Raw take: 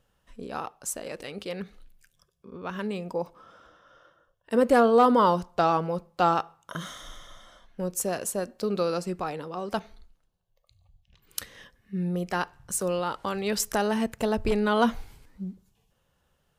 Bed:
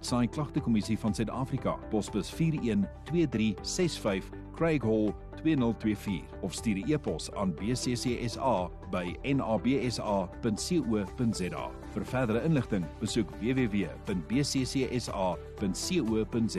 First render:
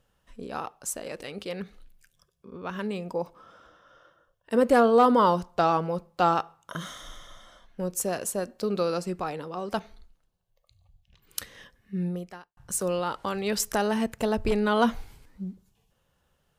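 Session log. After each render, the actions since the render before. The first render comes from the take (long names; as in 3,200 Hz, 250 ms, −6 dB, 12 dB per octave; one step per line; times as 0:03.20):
0:12.05–0:12.57: fade out quadratic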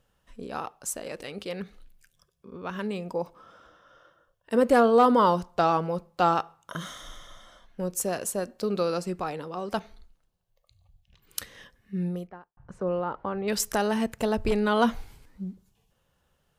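0:12.27–0:13.48: low-pass filter 1,300 Hz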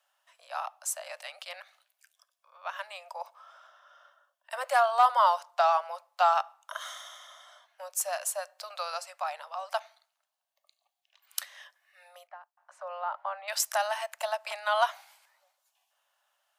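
Butterworth high-pass 590 Hz 96 dB per octave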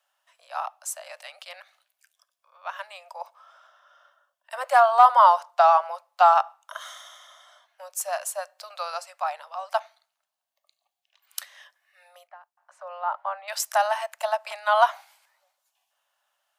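dynamic equaliser 900 Hz, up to +8 dB, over −37 dBFS, Q 0.71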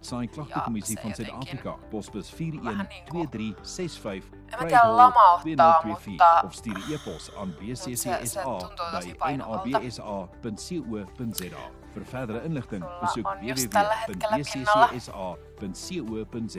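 mix in bed −3.5 dB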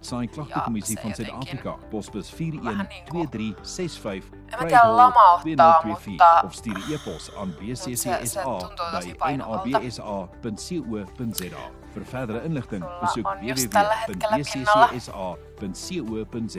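level +3 dB
brickwall limiter −3 dBFS, peak gain reduction 2.5 dB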